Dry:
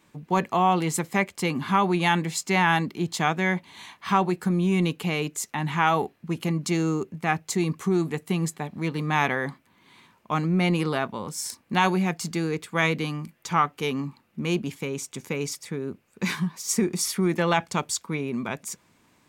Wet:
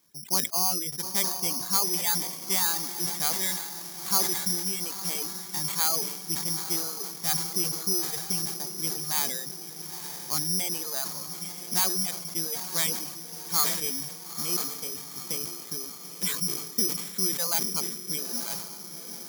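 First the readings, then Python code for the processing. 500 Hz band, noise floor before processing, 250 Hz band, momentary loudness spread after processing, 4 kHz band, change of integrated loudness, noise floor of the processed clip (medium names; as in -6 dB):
-12.0 dB, -64 dBFS, -13.5 dB, 10 LU, +4.0 dB, -1.0 dB, -42 dBFS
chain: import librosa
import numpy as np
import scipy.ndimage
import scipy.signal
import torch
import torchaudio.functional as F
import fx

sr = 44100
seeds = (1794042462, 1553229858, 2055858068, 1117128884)

y = fx.dereverb_blind(x, sr, rt60_s=1.2)
y = scipy.signal.sosfilt(scipy.signal.butter(2, 63.0, 'highpass', fs=sr, output='sos'), y)
y = fx.dereverb_blind(y, sr, rt60_s=0.91)
y = fx.quant_float(y, sr, bits=4)
y = fx.echo_diffused(y, sr, ms=928, feedback_pct=60, wet_db=-9.5)
y = (np.kron(scipy.signal.resample_poly(y, 1, 8), np.eye(8)[0]) * 8)[:len(y)]
y = fx.sustainer(y, sr, db_per_s=58.0)
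y = y * librosa.db_to_amplitude(-12.0)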